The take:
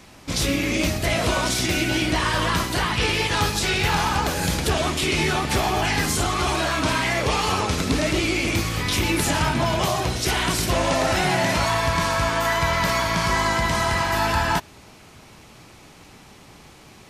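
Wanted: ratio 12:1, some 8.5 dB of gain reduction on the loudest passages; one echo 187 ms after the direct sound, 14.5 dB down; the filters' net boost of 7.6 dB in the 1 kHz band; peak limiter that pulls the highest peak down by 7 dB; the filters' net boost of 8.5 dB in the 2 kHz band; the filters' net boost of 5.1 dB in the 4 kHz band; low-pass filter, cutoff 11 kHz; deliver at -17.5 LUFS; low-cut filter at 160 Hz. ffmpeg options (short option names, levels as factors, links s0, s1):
-af "highpass=160,lowpass=11000,equalizer=f=1000:t=o:g=7,equalizer=f=2000:t=o:g=7.5,equalizer=f=4000:t=o:g=3.5,acompressor=threshold=0.1:ratio=12,alimiter=limit=0.141:level=0:latency=1,aecho=1:1:187:0.188,volume=2.37"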